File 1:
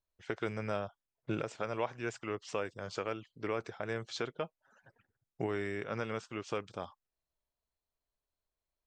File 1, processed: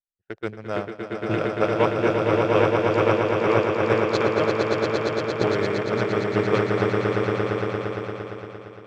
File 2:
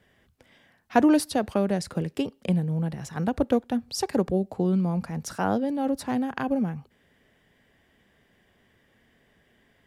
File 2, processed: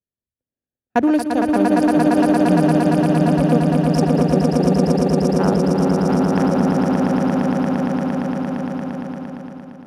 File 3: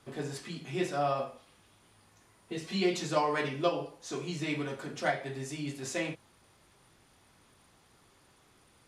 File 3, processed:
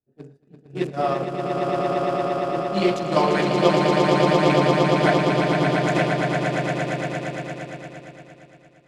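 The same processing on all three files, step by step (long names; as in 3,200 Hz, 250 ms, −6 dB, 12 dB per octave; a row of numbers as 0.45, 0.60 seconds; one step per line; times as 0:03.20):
adaptive Wiener filter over 41 samples
echo that builds up and dies away 115 ms, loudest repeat 8, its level −4.5 dB
downward expander −27 dBFS
normalise the peak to −3 dBFS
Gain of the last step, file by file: +14.5, +3.0, +8.5 decibels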